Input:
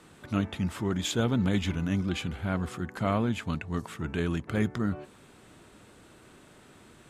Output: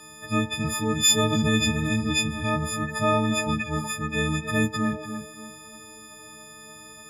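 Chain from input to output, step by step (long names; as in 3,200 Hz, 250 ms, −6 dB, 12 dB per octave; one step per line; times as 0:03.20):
every partial snapped to a pitch grid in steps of 6 semitones
tape delay 289 ms, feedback 34%, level −7 dB, low-pass 1,600 Hz
level +2.5 dB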